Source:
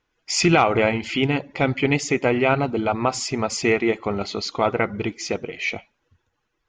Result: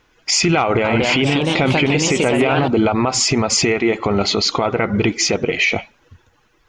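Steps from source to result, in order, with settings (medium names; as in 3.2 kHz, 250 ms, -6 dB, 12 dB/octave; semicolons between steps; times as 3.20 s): compression, threshold -24 dBFS, peak gain reduction 11.5 dB; 0.59–2.68 s: ever faster or slower copies 253 ms, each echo +2 st, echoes 3, each echo -6 dB; loudness maximiser +22 dB; trim -6 dB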